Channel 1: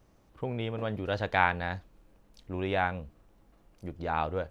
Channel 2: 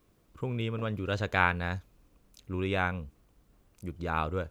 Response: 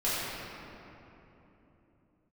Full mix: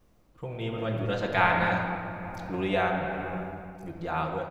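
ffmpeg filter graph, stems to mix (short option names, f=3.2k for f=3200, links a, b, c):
-filter_complex "[0:a]volume=-6.5dB,asplit=2[a][b];[b]volume=-6.5dB[c];[1:a]adelay=5.8,volume=-4.5dB,asplit=2[d][e];[e]volume=-18.5dB[f];[2:a]atrim=start_sample=2205[g];[c][f]amix=inputs=2:normalize=0[h];[h][g]afir=irnorm=-1:irlink=0[i];[a][d][i]amix=inputs=3:normalize=0,dynaudnorm=f=230:g=9:m=4.5dB,tremolo=f=1.2:d=0.3"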